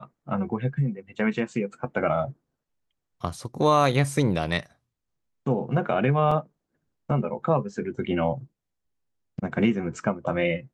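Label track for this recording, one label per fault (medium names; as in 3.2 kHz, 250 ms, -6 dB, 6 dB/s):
6.310000	6.310000	dropout 4.1 ms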